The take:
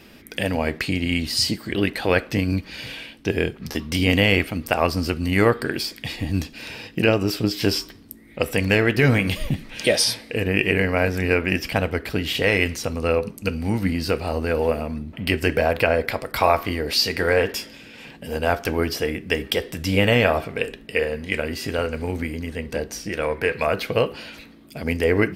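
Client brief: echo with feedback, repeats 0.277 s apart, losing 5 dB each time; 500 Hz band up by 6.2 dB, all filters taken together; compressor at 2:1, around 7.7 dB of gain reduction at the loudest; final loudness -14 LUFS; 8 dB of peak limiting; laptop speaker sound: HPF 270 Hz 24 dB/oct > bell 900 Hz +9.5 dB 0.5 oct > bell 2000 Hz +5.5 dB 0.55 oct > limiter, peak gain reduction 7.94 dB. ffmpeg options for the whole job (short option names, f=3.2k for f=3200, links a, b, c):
-af "equalizer=f=500:t=o:g=6,acompressor=threshold=-24dB:ratio=2,alimiter=limit=-15dB:level=0:latency=1,highpass=f=270:w=0.5412,highpass=f=270:w=1.3066,equalizer=f=900:t=o:w=0.5:g=9.5,equalizer=f=2k:t=o:w=0.55:g=5.5,aecho=1:1:277|554|831|1108|1385|1662|1939:0.562|0.315|0.176|0.0988|0.0553|0.031|0.0173,volume=12.5dB,alimiter=limit=-3dB:level=0:latency=1"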